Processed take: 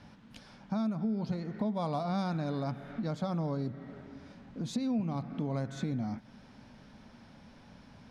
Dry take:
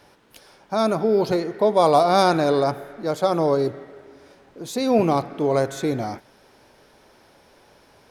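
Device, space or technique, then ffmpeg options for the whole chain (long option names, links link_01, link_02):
jukebox: -filter_complex "[0:a]lowpass=5700,lowshelf=frequency=290:width_type=q:width=3:gain=8.5,acompressor=threshold=-29dB:ratio=4,asettb=1/sr,asplit=3[link_01][link_02][link_03];[link_01]atrim=end=2.664[link_04];[link_02]atrim=start=2.66:end=3.08,asetpts=PTS-STARTPTS,afade=type=in:duration=0.004:curve=qsin,afade=type=out:start_time=0.416:duration=0.004:curve=qsin,equalizer=frequency=2900:width=1.3:gain=5[link_05];[link_03]atrim=start=3.076[link_06];[link_04][link_05]acrossfade=duration=0.004:curve1=hsin:curve2=qsin[link_07];[link_07][link_06]acrossfade=duration=0.004:curve1=qsin:curve2=hsin,volume=-4dB"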